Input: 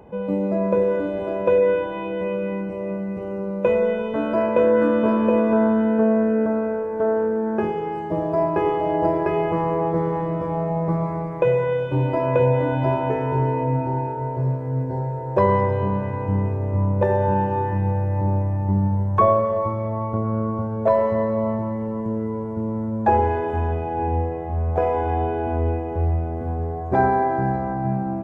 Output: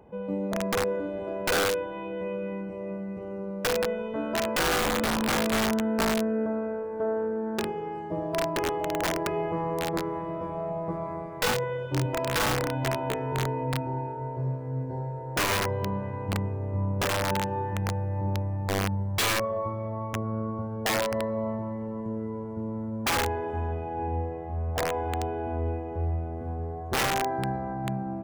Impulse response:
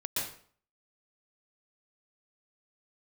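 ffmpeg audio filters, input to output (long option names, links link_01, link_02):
-filter_complex "[0:a]aeval=exprs='(mod(4.22*val(0)+1,2)-1)/4.22':channel_layout=same,asettb=1/sr,asplit=3[link_01][link_02][link_03];[link_01]atrim=end=9.914[link_04];[link_02]atrim=start=9.91:end=12.06,asetpts=PTS-STARTPTS,afade=type=in:duration=0.004:curve=qsin,afade=type=out:start_time=2.146:duration=0.004:curve=qsin,asplit=2[link_05][link_06];[link_06]adelay=21,volume=-4dB[link_07];[link_05][link_07]amix=inputs=2:normalize=0,atrim=end_sample=94815[link_08];[link_03]atrim=start=12.056[link_09];[link_04][link_08]acrossfade=duration=0.004:curve1=hsin:curve2=qsin[link_10];[link_10][link_09]acrossfade=duration=0.004:curve1=qsin:curve2=hsin,volume=-7.5dB"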